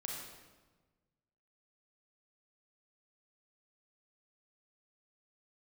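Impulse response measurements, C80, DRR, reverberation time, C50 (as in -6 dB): 2.5 dB, -2.0 dB, 1.3 s, 0.5 dB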